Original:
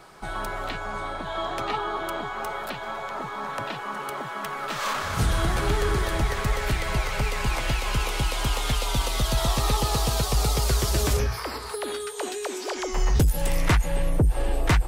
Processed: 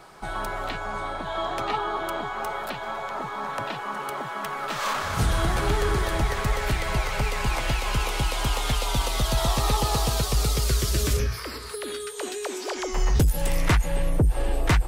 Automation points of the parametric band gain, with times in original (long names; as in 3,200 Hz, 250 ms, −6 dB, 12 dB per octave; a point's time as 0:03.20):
parametric band 810 Hz 0.81 octaves
0:10.00 +2 dB
0:10.39 −5.5 dB
0:10.82 −12 dB
0:11.92 −12 dB
0:12.49 −0.5 dB